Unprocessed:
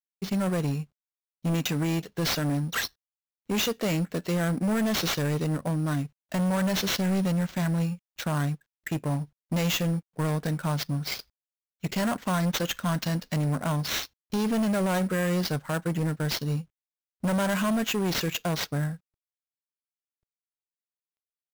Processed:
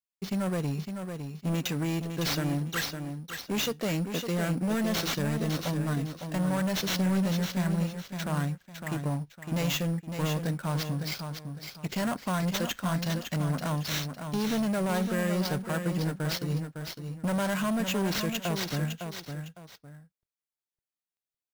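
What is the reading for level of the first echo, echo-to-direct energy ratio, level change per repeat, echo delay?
−7.0 dB, −6.5 dB, −10.5 dB, 557 ms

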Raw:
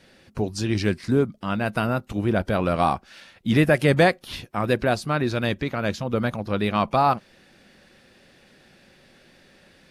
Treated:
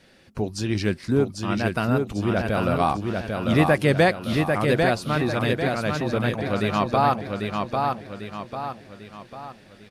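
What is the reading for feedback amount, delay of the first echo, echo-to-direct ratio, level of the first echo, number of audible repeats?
44%, 796 ms, −3.0 dB, −4.0 dB, 5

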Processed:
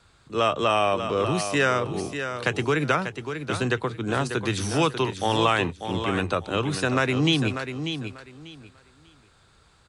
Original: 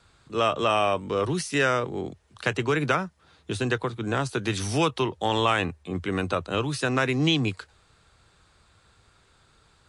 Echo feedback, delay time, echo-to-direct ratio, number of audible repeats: 21%, 592 ms, −8.5 dB, 2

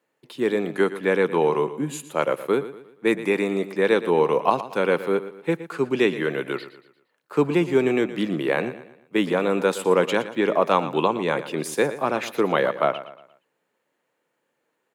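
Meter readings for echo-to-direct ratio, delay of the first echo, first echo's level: −13.0 dB, 117 ms, −14.0 dB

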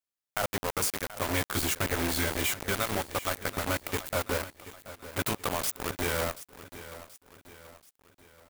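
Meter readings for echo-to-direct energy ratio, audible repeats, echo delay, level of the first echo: −14.0 dB, 4, 731 ms, −15.0 dB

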